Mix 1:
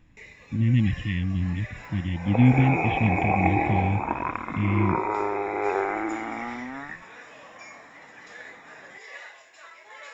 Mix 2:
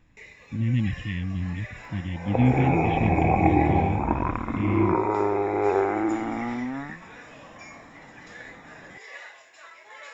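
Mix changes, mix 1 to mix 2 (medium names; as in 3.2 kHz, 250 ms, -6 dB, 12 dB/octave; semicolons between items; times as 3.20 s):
speech -3.0 dB; second sound: add tilt EQ -3.5 dB/octave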